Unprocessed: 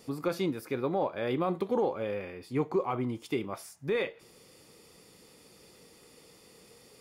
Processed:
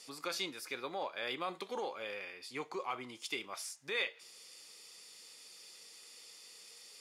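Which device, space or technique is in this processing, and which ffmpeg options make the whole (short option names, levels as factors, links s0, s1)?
piezo pickup straight into a mixer: -af "lowpass=6000,aderivative,volume=3.76"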